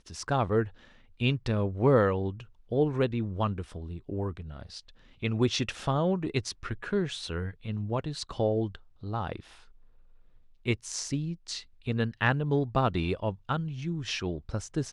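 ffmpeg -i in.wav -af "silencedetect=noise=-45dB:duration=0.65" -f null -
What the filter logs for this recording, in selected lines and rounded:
silence_start: 9.62
silence_end: 10.65 | silence_duration: 1.03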